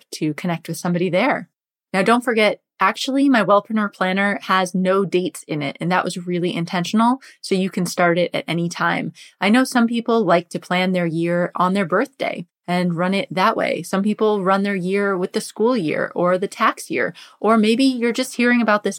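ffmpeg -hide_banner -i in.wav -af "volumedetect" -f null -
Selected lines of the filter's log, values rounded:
mean_volume: -19.2 dB
max_volume: -2.2 dB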